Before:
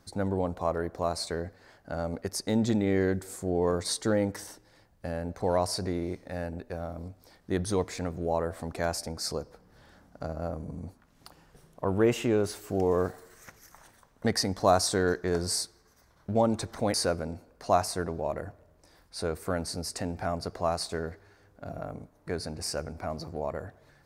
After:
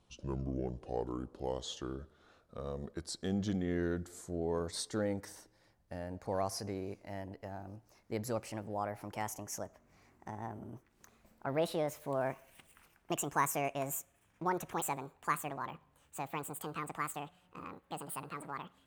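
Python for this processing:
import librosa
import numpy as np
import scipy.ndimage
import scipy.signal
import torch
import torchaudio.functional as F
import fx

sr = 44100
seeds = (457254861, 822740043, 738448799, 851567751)

y = fx.speed_glide(x, sr, from_pct=66, to_pct=189)
y = y * 10.0 ** (-8.5 / 20.0)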